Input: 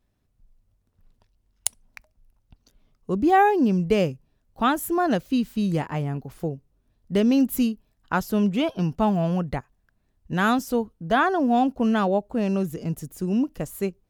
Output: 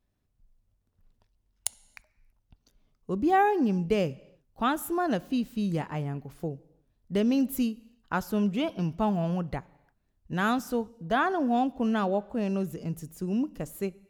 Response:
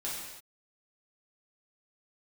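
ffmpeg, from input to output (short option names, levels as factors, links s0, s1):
-filter_complex "[0:a]asplit=2[s0][s1];[1:a]atrim=start_sample=2205,lowpass=8600[s2];[s1][s2]afir=irnorm=-1:irlink=0,volume=0.0794[s3];[s0][s3]amix=inputs=2:normalize=0,volume=0.531"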